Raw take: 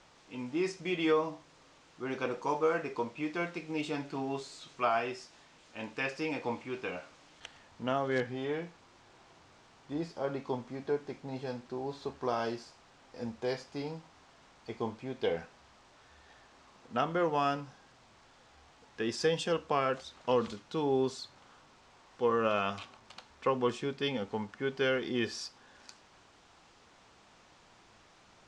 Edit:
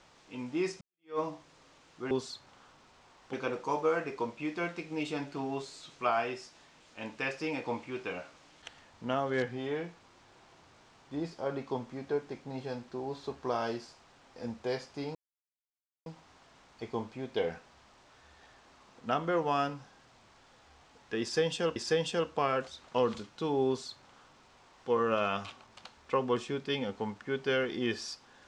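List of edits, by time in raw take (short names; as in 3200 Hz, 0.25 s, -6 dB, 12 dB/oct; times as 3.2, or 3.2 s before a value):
0.81–1.19 fade in exponential
13.93 insert silence 0.91 s
19.09–19.63 loop, 2 plays
21–22.22 copy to 2.11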